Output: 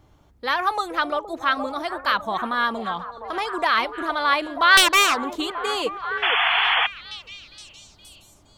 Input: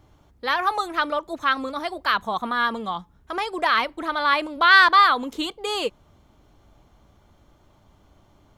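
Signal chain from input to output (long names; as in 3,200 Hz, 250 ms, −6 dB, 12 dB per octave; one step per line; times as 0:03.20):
0:04.77–0:05.27: phase distortion by the signal itself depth 0.35 ms
echo through a band-pass that steps 468 ms, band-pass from 510 Hz, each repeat 0.7 octaves, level −6.5 dB
0:06.22–0:06.87: sound drawn into the spectrogram noise 660–3,500 Hz −20 dBFS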